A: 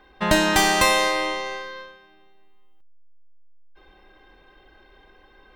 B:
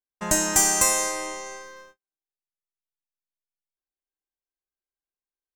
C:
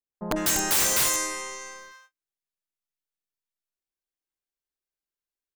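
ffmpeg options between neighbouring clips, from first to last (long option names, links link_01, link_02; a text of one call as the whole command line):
ffmpeg -i in.wav -af "agate=range=-44dB:threshold=-42dB:ratio=16:detection=peak,highshelf=frequency=5100:width_type=q:width=3:gain=11,volume=-7dB" out.wav
ffmpeg -i in.wav -filter_complex "[0:a]acrossover=split=870[link_01][link_02];[link_02]adelay=150[link_03];[link_01][link_03]amix=inputs=2:normalize=0,aeval=exprs='(mod(6.31*val(0)+1,2)-1)/6.31':channel_layout=same" out.wav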